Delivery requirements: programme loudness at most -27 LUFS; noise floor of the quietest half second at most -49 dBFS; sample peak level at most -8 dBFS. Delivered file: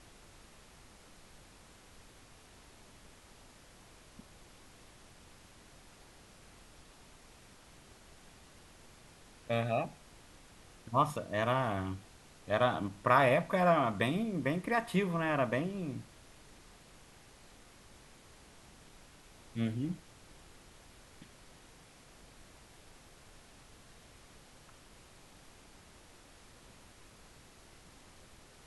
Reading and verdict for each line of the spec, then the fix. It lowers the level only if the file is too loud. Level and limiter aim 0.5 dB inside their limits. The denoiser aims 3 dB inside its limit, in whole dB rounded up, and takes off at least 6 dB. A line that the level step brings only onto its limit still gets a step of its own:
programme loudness -32.5 LUFS: OK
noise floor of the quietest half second -58 dBFS: OK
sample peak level -12.5 dBFS: OK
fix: none

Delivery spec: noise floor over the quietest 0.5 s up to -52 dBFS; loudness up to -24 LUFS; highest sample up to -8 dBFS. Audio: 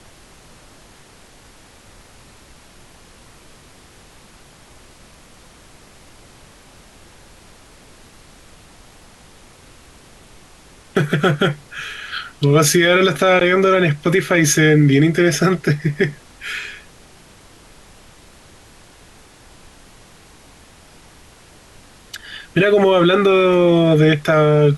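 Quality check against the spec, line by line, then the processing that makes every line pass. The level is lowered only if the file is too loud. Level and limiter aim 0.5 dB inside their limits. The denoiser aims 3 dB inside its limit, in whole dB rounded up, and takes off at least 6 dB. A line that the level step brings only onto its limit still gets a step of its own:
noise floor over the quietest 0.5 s -46 dBFS: fail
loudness -15.5 LUFS: fail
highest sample -4.5 dBFS: fail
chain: gain -9 dB

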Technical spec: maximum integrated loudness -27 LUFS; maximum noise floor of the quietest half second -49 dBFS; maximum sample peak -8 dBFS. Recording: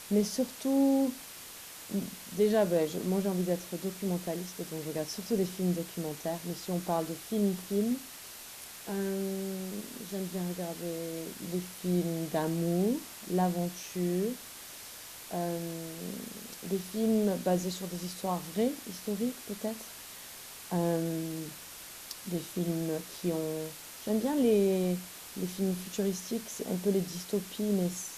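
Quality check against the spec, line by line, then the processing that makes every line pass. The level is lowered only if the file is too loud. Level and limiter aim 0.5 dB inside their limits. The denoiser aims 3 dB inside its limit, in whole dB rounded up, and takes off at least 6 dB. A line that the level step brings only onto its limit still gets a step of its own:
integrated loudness -33.0 LUFS: OK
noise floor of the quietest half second -47 dBFS: fail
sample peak -16.0 dBFS: OK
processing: denoiser 6 dB, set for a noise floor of -47 dBFS

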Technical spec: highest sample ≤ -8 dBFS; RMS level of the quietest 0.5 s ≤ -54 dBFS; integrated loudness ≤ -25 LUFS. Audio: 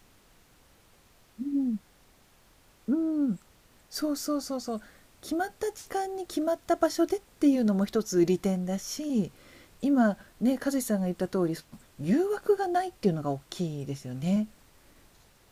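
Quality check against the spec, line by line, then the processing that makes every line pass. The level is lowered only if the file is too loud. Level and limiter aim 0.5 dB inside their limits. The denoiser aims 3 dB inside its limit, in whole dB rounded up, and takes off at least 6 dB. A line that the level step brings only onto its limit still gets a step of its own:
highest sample -11.0 dBFS: OK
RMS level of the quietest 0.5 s -60 dBFS: OK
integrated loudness -29.0 LUFS: OK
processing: none

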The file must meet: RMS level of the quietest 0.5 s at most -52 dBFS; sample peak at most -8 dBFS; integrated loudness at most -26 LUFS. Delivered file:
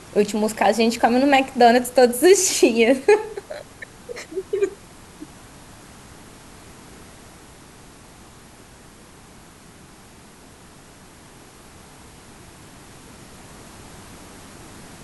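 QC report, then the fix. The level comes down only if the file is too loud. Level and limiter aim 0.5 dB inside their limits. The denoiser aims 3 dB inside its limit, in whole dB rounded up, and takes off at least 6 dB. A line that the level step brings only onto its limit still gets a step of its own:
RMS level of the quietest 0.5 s -46 dBFS: fail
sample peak -3.5 dBFS: fail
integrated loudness -18.0 LUFS: fail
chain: gain -8.5 dB

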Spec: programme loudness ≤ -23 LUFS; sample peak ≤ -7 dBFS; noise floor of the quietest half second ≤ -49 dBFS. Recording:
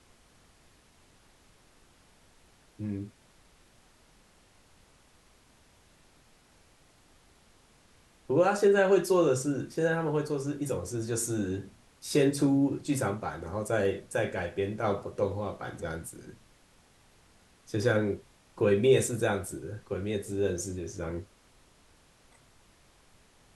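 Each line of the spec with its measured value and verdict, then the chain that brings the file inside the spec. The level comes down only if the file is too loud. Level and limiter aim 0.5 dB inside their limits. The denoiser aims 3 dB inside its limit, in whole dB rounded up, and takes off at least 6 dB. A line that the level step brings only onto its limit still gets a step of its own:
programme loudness -29.5 LUFS: OK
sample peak -12.5 dBFS: OK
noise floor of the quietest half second -61 dBFS: OK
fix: none

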